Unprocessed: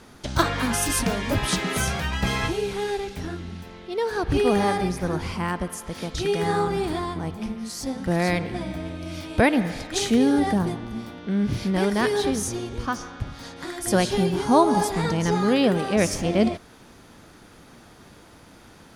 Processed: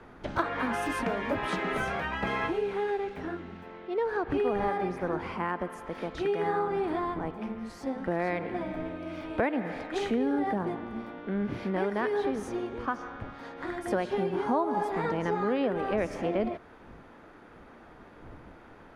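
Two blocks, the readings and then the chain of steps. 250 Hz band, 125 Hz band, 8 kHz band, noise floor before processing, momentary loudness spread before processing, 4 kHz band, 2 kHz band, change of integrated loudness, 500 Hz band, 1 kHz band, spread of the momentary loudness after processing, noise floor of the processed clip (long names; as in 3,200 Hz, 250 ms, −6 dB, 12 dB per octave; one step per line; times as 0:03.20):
−8.5 dB, −12.0 dB, below −20 dB, −49 dBFS, 13 LU, −14.5 dB, −5.5 dB, −7.0 dB, −5.0 dB, −4.5 dB, 10 LU, −52 dBFS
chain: wind on the microphone 88 Hz −37 dBFS
three-way crossover with the lows and the highs turned down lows −15 dB, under 240 Hz, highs −22 dB, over 2,400 Hz
downward compressor 3 to 1, threshold −26 dBFS, peak gain reduction 10.5 dB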